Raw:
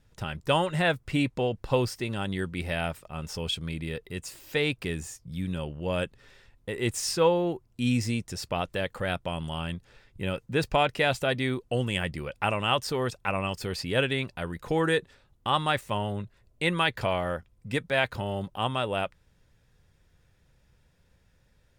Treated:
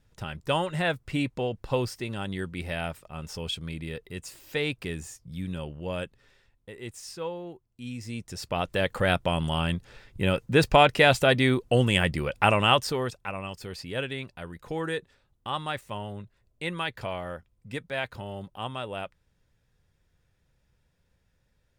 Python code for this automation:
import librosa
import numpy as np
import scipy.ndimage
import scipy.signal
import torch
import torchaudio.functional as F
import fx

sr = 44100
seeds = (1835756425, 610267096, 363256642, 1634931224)

y = fx.gain(x, sr, db=fx.line((5.75, -2.0), (6.94, -12.0), (7.97, -12.0), (8.22, -4.0), (8.95, 6.0), (12.64, 6.0), (13.32, -6.0)))